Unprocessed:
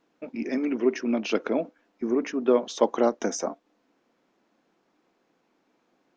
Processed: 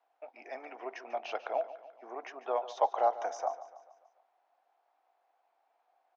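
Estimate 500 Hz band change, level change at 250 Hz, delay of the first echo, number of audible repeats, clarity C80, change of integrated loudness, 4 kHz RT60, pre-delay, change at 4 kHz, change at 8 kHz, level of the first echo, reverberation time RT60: -9.5 dB, -28.5 dB, 145 ms, 4, no reverb, -9.0 dB, no reverb, no reverb, -12.0 dB, -17.5 dB, -15.0 dB, no reverb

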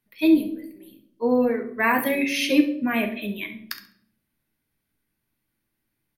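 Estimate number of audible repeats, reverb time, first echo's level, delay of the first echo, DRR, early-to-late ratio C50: 1, 0.65 s, -13.0 dB, 68 ms, 4.5 dB, 9.5 dB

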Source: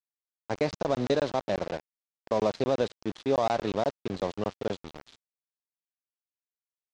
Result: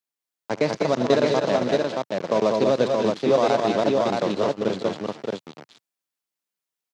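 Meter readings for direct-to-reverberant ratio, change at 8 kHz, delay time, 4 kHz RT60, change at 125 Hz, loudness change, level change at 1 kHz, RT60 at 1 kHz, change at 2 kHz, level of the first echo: no reverb, +8.5 dB, 69 ms, no reverb, +5.5 dB, +7.5 dB, +7.0 dB, no reverb, +8.5 dB, -18.0 dB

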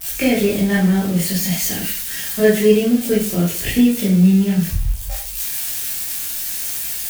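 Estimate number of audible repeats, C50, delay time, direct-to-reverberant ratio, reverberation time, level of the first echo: no echo, 4.5 dB, no echo, -7.5 dB, 0.45 s, no echo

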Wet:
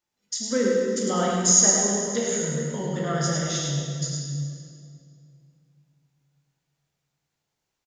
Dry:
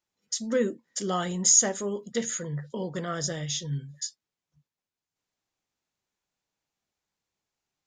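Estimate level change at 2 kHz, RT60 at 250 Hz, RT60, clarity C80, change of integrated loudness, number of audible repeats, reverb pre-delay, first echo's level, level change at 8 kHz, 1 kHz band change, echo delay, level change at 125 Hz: +5.0 dB, 3.1 s, 2.4 s, -1.0 dB, +4.5 dB, 1, 11 ms, -4.5 dB, +4.5 dB, +5.5 dB, 104 ms, +7.0 dB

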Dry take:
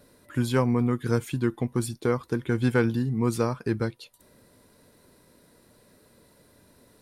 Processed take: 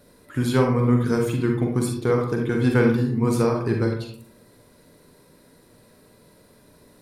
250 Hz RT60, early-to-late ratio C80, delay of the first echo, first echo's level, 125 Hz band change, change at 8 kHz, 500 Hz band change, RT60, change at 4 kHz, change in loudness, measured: 0.75 s, 8.0 dB, no echo, no echo, +4.5 dB, +2.5 dB, +5.5 dB, 0.60 s, +3.5 dB, +4.5 dB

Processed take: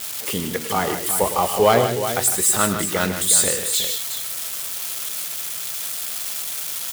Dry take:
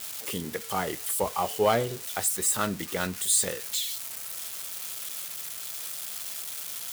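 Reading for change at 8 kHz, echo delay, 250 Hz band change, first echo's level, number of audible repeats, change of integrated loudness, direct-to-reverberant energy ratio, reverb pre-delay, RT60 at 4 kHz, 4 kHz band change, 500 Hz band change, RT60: +8.5 dB, 107 ms, +8.5 dB, -12.0 dB, 3, +8.5 dB, no reverb, no reverb, no reverb, +8.5 dB, +8.5 dB, no reverb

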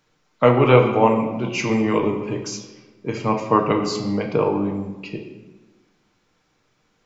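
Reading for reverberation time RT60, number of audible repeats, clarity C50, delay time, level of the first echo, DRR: 1.2 s, no echo, 7.0 dB, no echo, no echo, 2.0 dB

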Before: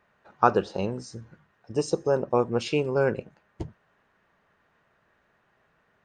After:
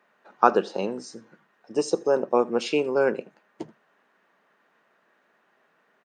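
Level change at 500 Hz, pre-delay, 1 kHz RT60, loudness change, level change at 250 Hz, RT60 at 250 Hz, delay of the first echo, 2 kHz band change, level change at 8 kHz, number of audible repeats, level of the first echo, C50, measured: +2.0 dB, no reverb, no reverb, +1.5 dB, +1.0 dB, no reverb, 81 ms, +2.0 dB, +2.0 dB, 1, -23.5 dB, no reverb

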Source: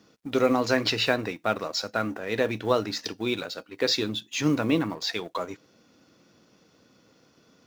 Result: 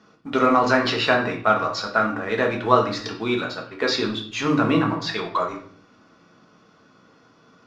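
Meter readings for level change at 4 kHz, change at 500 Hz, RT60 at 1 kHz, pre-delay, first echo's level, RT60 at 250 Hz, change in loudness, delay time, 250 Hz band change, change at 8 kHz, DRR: +1.0 dB, +4.0 dB, 0.50 s, 5 ms, no echo, 0.90 s, +5.0 dB, no echo, +4.0 dB, -2.0 dB, 0.5 dB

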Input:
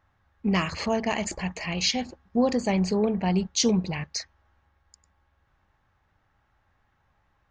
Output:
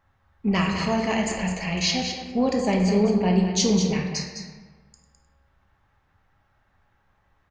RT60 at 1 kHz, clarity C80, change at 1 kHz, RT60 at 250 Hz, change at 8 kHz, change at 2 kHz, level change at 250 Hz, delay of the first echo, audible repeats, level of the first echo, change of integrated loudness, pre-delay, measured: 1.4 s, 4.5 dB, +2.5 dB, 1.7 s, +1.5 dB, +3.0 dB, +3.5 dB, 208 ms, 1, -8.0 dB, +3.0 dB, 4 ms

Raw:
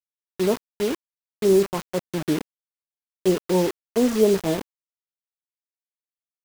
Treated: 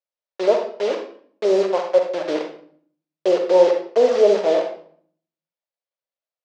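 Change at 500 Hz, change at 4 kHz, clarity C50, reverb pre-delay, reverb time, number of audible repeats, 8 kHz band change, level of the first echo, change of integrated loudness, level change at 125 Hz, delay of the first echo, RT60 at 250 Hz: +6.0 dB, +1.0 dB, 5.5 dB, 40 ms, 0.55 s, no echo, no reading, no echo, +4.0 dB, under -15 dB, no echo, 0.80 s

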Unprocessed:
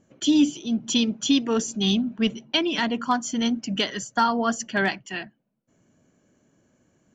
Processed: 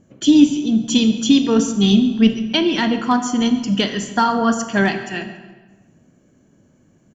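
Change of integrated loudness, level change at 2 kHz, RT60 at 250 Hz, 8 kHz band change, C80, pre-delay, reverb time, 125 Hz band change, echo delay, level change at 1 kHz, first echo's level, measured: +7.5 dB, +4.0 dB, 1.7 s, no reading, 11.0 dB, 18 ms, 1.4 s, +10.0 dB, 140 ms, +5.0 dB, -19.0 dB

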